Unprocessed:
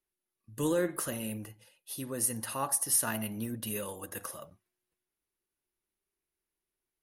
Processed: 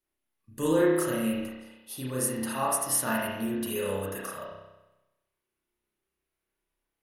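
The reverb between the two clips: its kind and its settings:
spring reverb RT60 1 s, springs 31 ms, chirp 50 ms, DRR −5.5 dB

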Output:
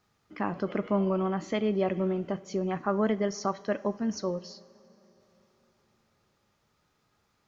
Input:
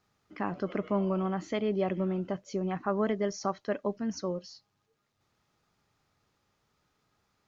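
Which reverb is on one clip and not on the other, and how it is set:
coupled-rooms reverb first 0.46 s, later 4.2 s, from −16 dB, DRR 13.5 dB
level +2 dB

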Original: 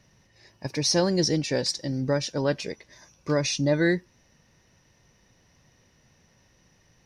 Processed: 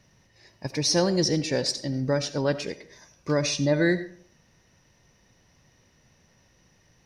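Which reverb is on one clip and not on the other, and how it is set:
comb and all-pass reverb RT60 0.51 s, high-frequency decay 0.55×, pre-delay 40 ms, DRR 13 dB

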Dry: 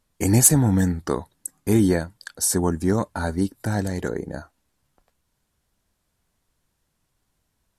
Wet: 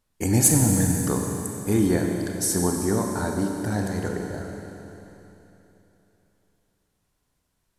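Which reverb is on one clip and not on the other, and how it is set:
four-comb reverb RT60 3.3 s, combs from 30 ms, DRR 1.5 dB
level −3.5 dB

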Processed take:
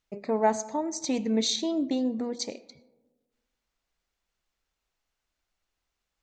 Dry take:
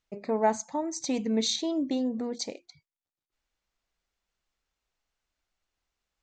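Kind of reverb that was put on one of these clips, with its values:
comb and all-pass reverb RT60 1.3 s, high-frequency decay 0.35×, pre-delay 45 ms, DRR 18.5 dB
level +1 dB

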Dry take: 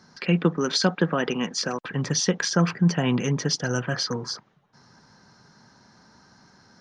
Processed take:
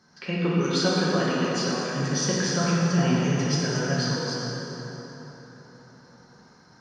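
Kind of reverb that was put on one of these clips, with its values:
dense smooth reverb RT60 4.3 s, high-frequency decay 0.6×, DRR −7 dB
level −7.5 dB

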